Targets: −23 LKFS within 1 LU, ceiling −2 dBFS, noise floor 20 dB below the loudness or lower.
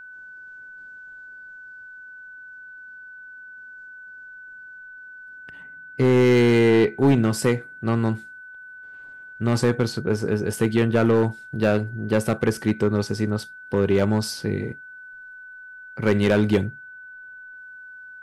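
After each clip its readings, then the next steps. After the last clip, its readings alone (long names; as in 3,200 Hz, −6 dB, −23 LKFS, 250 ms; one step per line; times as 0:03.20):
share of clipped samples 0.7%; peaks flattened at −11.0 dBFS; interfering tone 1,500 Hz; level of the tone −39 dBFS; integrated loudness −21.5 LKFS; sample peak −11.0 dBFS; target loudness −23.0 LKFS
→ clipped peaks rebuilt −11 dBFS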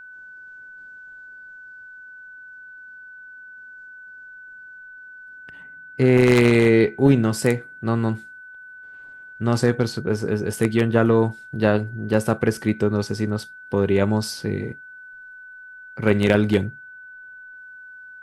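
share of clipped samples 0.0%; interfering tone 1,500 Hz; level of the tone −39 dBFS
→ notch filter 1,500 Hz, Q 30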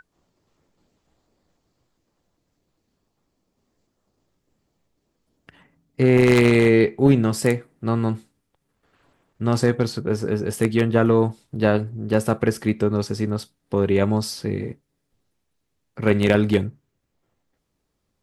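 interfering tone none found; integrated loudness −20.5 LKFS; sample peak −2.0 dBFS; target loudness −23.0 LKFS
→ level −2.5 dB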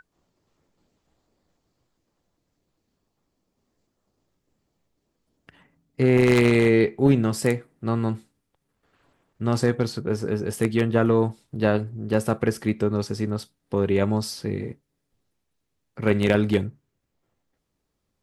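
integrated loudness −23.0 LKFS; sample peak −4.5 dBFS; background noise floor −77 dBFS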